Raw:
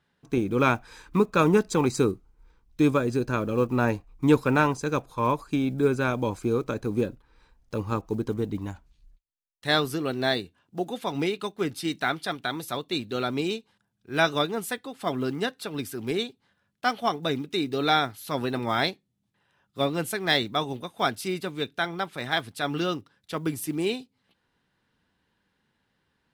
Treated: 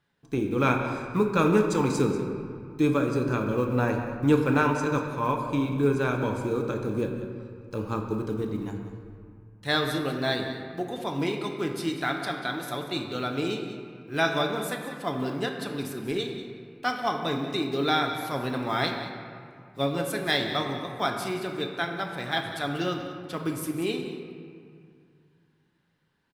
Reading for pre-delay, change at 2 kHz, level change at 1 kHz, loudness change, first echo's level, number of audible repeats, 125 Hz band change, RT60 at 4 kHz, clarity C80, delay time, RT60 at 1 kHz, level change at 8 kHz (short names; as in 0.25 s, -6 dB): 6 ms, -1.0 dB, -1.0 dB, -1.0 dB, -14.0 dB, 1, +0.5 dB, 1.3 s, 5.5 dB, 0.189 s, 2.3 s, -2.0 dB